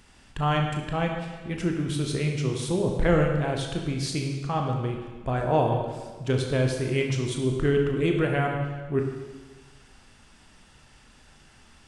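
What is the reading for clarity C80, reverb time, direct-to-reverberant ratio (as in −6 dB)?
5.5 dB, 1.4 s, 1.5 dB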